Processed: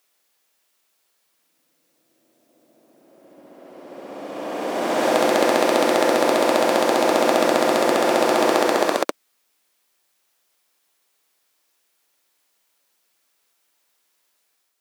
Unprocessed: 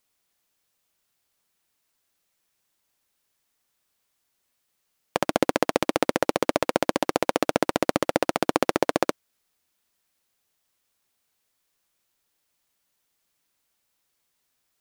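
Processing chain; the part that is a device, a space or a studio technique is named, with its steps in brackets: ghost voice (reverse; reverb RT60 3.2 s, pre-delay 66 ms, DRR -5.5 dB; reverse; HPF 310 Hz 12 dB/oct); gain +1 dB

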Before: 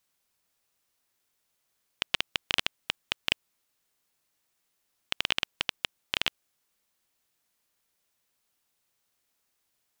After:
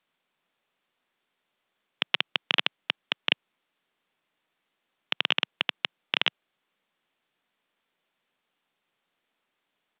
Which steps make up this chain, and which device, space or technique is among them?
Bluetooth headset (HPF 150 Hz 24 dB/oct; downsampling 8000 Hz; gain +4 dB; SBC 64 kbps 32000 Hz)

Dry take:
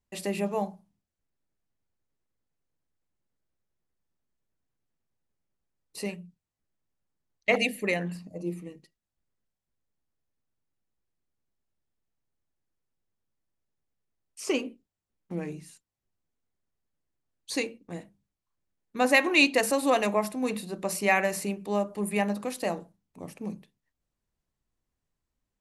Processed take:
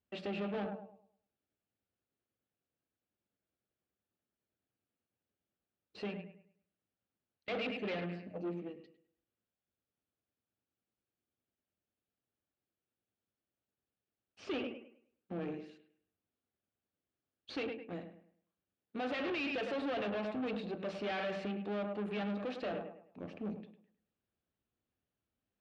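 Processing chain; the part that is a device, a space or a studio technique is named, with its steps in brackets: analogue delay pedal into a guitar amplifier (analogue delay 0.104 s, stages 2048, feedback 32%, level -11 dB; tube stage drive 35 dB, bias 0.5; speaker cabinet 100–3500 Hz, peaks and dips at 150 Hz -8 dB, 980 Hz -8 dB, 2000 Hz -6 dB); gain +1.5 dB

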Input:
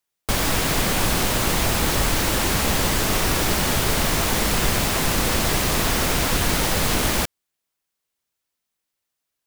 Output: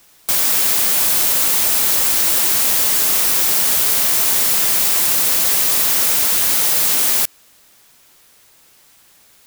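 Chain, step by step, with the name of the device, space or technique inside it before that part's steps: turntable without a phono preamp (RIAA curve recording; white noise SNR 34 dB); gain -3.5 dB

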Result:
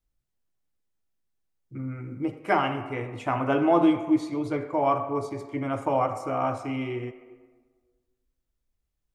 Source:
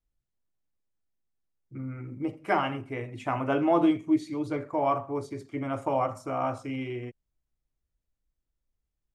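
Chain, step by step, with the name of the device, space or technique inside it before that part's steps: filtered reverb send (on a send: HPF 330 Hz 12 dB/oct + LPF 3700 Hz + reverb RT60 1.5 s, pre-delay 57 ms, DRR 10.5 dB); on the sum: gain +2.5 dB

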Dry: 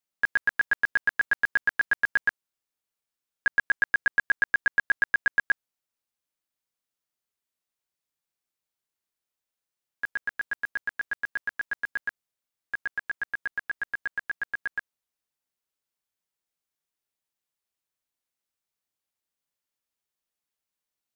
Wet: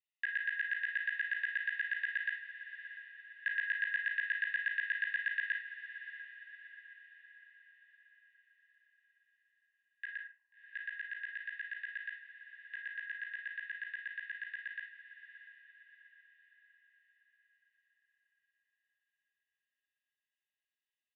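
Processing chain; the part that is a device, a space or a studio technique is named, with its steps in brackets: 10.17–10.75 steep low-pass 1000 Hz 96 dB/oct; microphone above a desk (comb 1.1 ms, depth 78%; reverb RT60 0.45 s, pre-delay 30 ms, DRR 1 dB); elliptic band-pass 530–3300 Hz, stop band 40 dB; Chebyshev high-pass 1900 Hz, order 5; diffused feedback echo 0.661 s, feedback 49%, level -11 dB; gain -3 dB

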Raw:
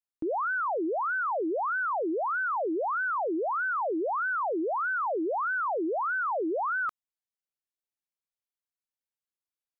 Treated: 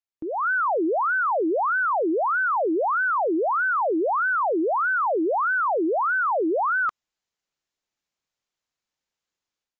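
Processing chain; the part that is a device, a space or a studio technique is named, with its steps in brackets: low-bitrate web radio (AGC gain up to 13.5 dB; limiter -17 dBFS, peak gain reduction 4.5 dB; gain -2.5 dB; AAC 48 kbps 16000 Hz)

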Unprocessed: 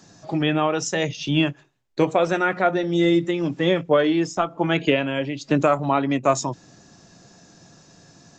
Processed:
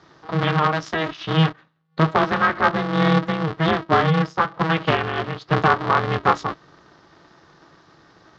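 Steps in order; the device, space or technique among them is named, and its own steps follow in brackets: ring modulator pedal into a guitar cabinet (polarity switched at an audio rate 160 Hz; speaker cabinet 91–4200 Hz, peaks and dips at 160 Hz +7 dB, 260 Hz -4 dB, 500 Hz -4 dB, 1200 Hz +8 dB, 1700 Hz +3 dB, 2500 Hz -5 dB)

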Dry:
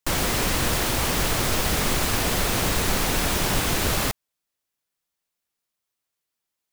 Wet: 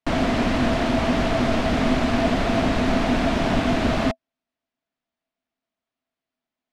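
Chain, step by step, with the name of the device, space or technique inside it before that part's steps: inside a cardboard box (LPF 3200 Hz 12 dB/oct; small resonant body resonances 250/660 Hz, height 15 dB, ringing for 70 ms)

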